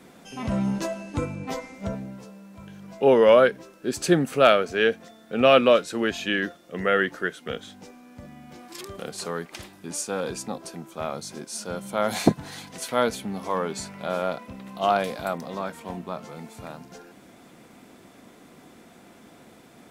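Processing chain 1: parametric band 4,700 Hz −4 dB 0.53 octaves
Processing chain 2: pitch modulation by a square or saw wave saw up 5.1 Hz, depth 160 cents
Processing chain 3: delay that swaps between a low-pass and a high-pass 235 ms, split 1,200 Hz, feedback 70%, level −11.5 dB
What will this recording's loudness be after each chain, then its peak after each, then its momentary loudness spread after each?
−24.5, −24.5, −24.5 LKFS; −3.5, −4.0, −3.5 dBFS; 22, 22, 22 LU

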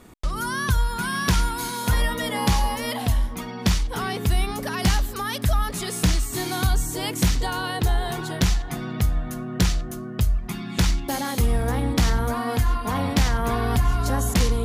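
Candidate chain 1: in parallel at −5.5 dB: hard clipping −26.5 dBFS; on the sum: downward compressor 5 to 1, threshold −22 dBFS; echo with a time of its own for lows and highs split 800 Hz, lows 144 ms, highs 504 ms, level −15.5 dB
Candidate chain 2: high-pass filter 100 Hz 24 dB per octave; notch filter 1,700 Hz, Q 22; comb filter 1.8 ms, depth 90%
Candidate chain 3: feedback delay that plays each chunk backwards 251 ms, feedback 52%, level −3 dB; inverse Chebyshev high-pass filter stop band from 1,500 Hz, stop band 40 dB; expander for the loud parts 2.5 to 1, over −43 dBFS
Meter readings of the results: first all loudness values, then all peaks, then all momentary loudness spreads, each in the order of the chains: −26.5, −24.5, −36.5 LKFS; −12.5, −4.0, −10.0 dBFS; 3, 6, 15 LU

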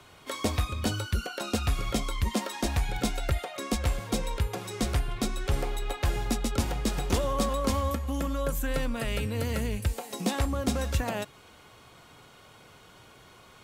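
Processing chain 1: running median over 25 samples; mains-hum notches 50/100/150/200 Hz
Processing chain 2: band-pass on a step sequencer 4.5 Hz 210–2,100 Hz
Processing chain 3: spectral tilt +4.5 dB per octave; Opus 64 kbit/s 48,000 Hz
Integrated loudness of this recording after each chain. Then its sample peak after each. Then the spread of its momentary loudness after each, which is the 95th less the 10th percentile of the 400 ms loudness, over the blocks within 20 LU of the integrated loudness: −32.5, −42.5, −26.5 LKFS; −16.5, −22.0, −5.5 dBFS; 5, 8, 22 LU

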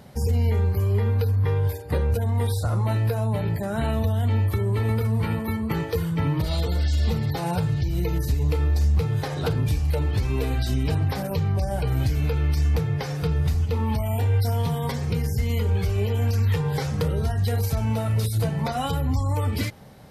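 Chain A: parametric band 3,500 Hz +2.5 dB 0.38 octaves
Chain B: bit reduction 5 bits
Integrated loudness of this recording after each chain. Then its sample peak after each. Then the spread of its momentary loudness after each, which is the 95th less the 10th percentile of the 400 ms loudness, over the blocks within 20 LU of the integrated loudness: −24.5, −23.5 LKFS; −13.5, −14.0 dBFS; 4, 3 LU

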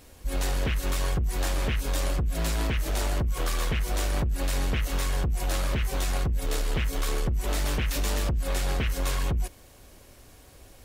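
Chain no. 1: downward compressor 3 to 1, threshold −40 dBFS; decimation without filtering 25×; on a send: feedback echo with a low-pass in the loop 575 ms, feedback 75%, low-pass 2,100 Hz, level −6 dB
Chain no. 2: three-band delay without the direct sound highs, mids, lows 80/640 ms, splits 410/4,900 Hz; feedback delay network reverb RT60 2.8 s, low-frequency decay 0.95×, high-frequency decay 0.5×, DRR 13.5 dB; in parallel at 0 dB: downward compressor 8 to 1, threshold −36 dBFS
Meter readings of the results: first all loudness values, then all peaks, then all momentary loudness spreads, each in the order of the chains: −40.0, −27.0 LKFS; −26.5, −14.0 dBFS; 5, 4 LU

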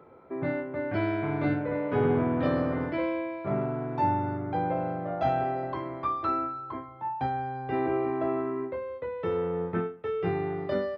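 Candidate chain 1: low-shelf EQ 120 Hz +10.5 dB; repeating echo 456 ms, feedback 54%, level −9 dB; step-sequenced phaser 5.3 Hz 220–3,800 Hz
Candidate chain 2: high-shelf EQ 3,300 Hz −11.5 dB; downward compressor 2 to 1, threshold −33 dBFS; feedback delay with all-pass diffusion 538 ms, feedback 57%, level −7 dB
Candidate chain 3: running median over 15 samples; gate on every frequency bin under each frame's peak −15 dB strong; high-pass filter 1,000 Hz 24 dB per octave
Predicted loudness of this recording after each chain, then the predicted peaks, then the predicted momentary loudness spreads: −31.0, −34.0, −41.0 LKFS; −13.5, −20.0, −24.0 dBFS; 9, 4, 16 LU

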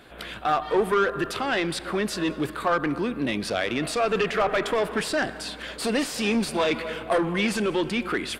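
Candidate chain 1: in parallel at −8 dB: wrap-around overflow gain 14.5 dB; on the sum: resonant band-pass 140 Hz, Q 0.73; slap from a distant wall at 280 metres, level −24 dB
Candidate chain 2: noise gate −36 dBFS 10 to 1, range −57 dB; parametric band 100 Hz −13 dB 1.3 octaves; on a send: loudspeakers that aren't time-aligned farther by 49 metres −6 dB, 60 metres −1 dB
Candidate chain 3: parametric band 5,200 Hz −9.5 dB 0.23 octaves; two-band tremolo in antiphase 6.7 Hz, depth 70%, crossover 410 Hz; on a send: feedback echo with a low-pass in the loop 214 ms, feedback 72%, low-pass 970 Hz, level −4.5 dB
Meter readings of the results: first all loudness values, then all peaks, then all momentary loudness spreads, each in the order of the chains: −29.5, −23.5, −28.0 LKFS; −16.0, −7.0, −11.0 dBFS; 9, 5, 5 LU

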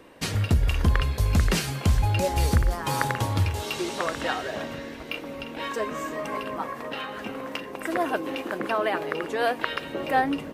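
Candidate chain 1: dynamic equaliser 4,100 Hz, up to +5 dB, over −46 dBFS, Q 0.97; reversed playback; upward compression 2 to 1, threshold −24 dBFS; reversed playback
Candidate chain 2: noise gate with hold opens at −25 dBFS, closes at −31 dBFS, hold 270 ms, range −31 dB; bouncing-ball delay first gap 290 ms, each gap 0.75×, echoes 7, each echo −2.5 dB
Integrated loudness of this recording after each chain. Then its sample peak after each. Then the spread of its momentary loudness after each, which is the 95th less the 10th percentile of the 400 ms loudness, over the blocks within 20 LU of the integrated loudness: −26.0, −23.5 LKFS; −5.5, −4.0 dBFS; 8, 10 LU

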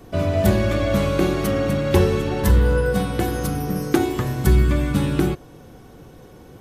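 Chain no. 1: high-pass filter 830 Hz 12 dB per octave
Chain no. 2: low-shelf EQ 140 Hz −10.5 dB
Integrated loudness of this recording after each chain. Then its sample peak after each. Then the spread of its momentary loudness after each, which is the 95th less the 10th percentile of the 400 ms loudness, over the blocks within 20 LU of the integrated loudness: −30.0, −23.5 LKFS; −11.5, −5.0 dBFS; 5, 5 LU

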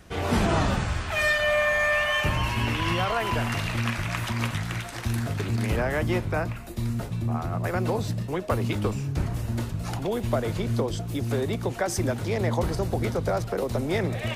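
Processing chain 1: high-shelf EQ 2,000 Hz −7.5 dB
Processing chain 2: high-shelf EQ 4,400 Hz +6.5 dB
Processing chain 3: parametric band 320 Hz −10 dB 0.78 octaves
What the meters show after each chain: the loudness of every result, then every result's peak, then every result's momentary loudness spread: −28.0, −26.0, −28.0 LKFS; −12.0, −9.5, −10.5 dBFS; 6, 9, 9 LU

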